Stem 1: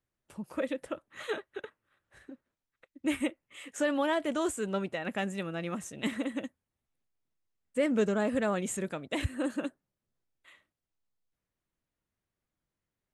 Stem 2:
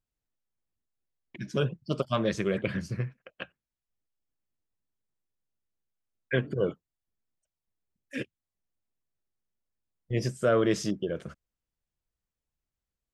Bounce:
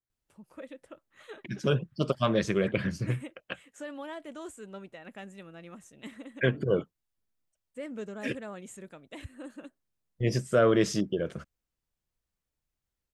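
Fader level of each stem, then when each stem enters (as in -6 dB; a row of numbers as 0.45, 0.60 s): -11.5, +1.5 dB; 0.00, 0.10 s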